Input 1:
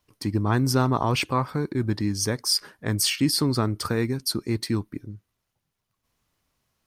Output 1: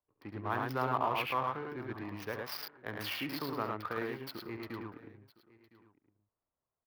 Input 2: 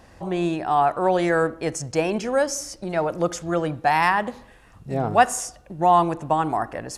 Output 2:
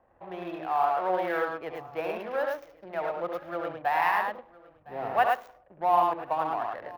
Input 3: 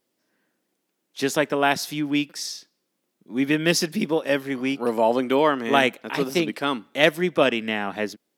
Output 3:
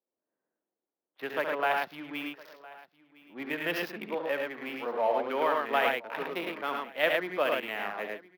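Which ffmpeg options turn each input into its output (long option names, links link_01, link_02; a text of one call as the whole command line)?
ffmpeg -i in.wav -filter_complex "[0:a]highshelf=frequency=3100:gain=-3.5,asplit=2[link_01][link_02];[link_02]aecho=0:1:69.97|107.9:0.447|0.708[link_03];[link_01][link_03]amix=inputs=2:normalize=0,adynamicsmooth=sensitivity=5:basefreq=730,acrossover=split=470 3500:gain=0.158 1 0.0891[link_04][link_05][link_06];[link_04][link_05][link_06]amix=inputs=3:normalize=0,asplit=2[link_07][link_08];[link_08]aecho=0:1:1010:0.0891[link_09];[link_07][link_09]amix=inputs=2:normalize=0,aexciter=amount=14.2:drive=4.1:freq=11000,volume=-6.5dB" out.wav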